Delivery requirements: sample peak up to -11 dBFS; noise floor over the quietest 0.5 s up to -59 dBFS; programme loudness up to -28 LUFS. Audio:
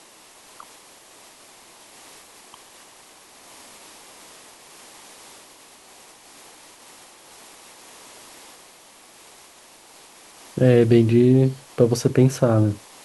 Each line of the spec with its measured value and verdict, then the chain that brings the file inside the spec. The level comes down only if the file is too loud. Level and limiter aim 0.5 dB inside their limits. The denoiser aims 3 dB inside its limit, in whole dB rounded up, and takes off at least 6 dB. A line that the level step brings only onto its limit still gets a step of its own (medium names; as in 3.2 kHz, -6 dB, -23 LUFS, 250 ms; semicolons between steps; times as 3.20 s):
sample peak -4.0 dBFS: fail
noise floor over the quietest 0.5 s -49 dBFS: fail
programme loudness -18.0 LUFS: fail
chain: trim -10.5 dB